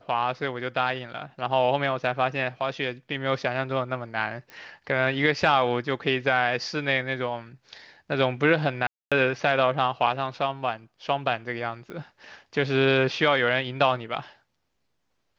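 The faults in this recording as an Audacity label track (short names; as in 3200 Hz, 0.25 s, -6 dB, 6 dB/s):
4.500000	4.500000	pop -26 dBFS
8.870000	9.120000	gap 0.246 s
11.900000	11.900000	pop -26 dBFS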